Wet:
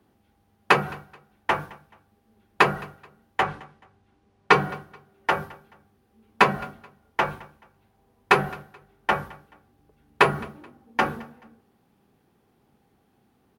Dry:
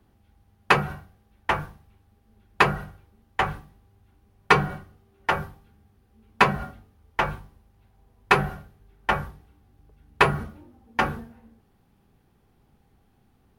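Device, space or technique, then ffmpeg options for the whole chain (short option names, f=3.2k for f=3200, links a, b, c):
filter by subtraction: -filter_complex "[0:a]asettb=1/sr,asplit=3[a][b][c];[a]atrim=end=3.434[d];[b]atrim=start=3.43:end=4.53,asetpts=PTS-STARTPTS,afade=t=in:d=0.004:c=qsin,afade=t=out:st=1.096:d=0.004:c=qsin,lowpass=7.1k[e];[c]atrim=start=4.526[f];[d][e]acrossfade=d=0.004:c1=hsin:c2=qsin[g];[g][f]acrossfade=d=0.004:c1=qsin:c2=hsin,aecho=1:1:215|430:0.0708|0.0219,asplit=2[h][i];[i]lowpass=310,volume=-1[j];[h][j]amix=inputs=2:normalize=0"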